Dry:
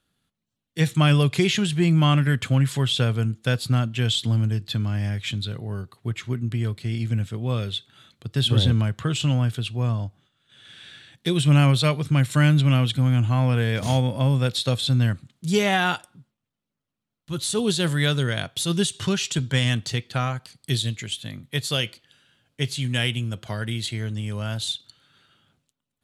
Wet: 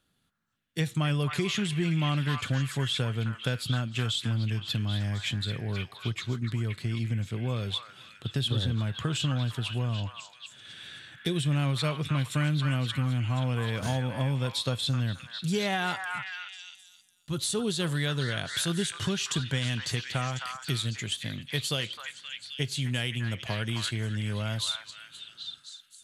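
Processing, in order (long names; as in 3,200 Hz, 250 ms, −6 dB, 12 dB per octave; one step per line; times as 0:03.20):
downward compressor 3 to 1, threshold −28 dBFS, peak gain reduction 11 dB
on a send: echo through a band-pass that steps 262 ms, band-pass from 1,300 Hz, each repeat 0.7 octaves, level −1.5 dB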